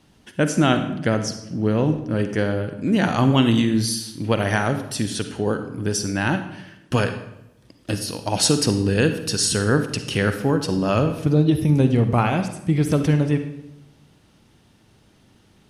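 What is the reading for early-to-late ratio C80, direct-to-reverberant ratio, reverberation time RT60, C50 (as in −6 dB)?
11.5 dB, 8.0 dB, 0.85 s, 9.0 dB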